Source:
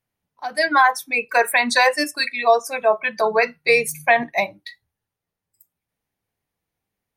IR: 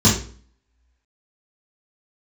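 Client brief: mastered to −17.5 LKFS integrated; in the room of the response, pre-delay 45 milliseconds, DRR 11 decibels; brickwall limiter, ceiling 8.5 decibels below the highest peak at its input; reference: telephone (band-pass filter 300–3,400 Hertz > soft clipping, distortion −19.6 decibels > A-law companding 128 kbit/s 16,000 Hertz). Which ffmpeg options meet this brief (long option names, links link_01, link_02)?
-filter_complex "[0:a]alimiter=limit=-12dB:level=0:latency=1,asplit=2[link_01][link_02];[1:a]atrim=start_sample=2205,adelay=45[link_03];[link_02][link_03]afir=irnorm=-1:irlink=0,volume=-31dB[link_04];[link_01][link_04]amix=inputs=2:normalize=0,highpass=300,lowpass=3400,asoftclip=threshold=-14dB,volume=7.5dB" -ar 16000 -c:a pcm_alaw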